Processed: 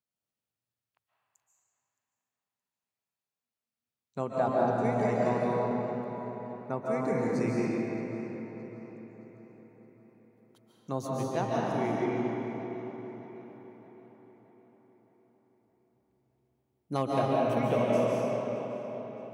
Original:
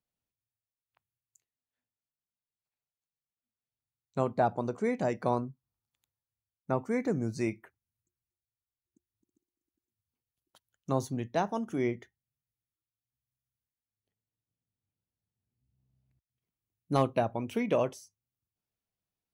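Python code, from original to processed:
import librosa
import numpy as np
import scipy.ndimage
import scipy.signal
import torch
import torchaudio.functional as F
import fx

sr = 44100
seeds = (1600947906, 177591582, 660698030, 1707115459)

y = scipy.signal.sosfilt(scipy.signal.butter(2, 97.0, 'highpass', fs=sr, output='sos'), x)
y = fx.echo_filtered(y, sr, ms=619, feedback_pct=51, hz=4600.0, wet_db=-14)
y = fx.rev_freeverb(y, sr, rt60_s=3.7, hf_ratio=0.65, predelay_ms=105, drr_db=-5.5)
y = F.gain(torch.from_numpy(y), -4.0).numpy()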